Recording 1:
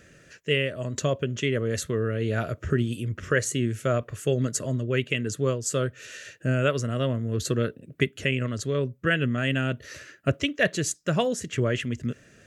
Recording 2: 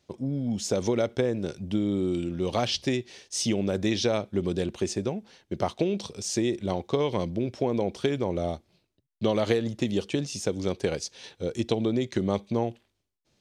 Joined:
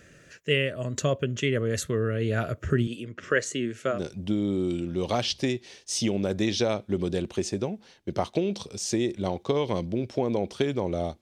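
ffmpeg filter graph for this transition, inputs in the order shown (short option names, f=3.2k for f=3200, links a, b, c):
-filter_complex "[0:a]asettb=1/sr,asplit=3[a][b][c];[a]atrim=end=2.874[d];[b]atrim=start=2.87:end=4.02,asetpts=PTS-STARTPTS,afade=t=in:d=0.004:c=qsin,afade=t=out:st=1.146:d=0.004:c=qsin,highpass=240,lowpass=6.2k[e];[c]atrim=start=4.016[f];[d][e]acrossfade=d=0.004:c1=hsin:c2=qsin[g];[g][f]acrossfade=d=0.004:c1=qsin:c2=hsin,apad=whole_dur=11.21,atrim=end=11.21,atrim=end=4.02,asetpts=PTS-STARTPTS[h];[1:a]atrim=start=1.32:end=8.65,asetpts=PTS-STARTPTS[i];[h][i]acrossfade=d=0.14:c1=tri:c2=tri"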